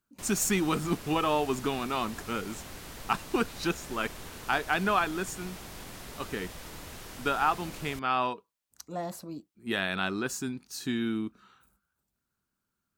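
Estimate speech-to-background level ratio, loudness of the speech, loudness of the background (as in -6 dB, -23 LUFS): 12.5 dB, -31.0 LUFS, -43.5 LUFS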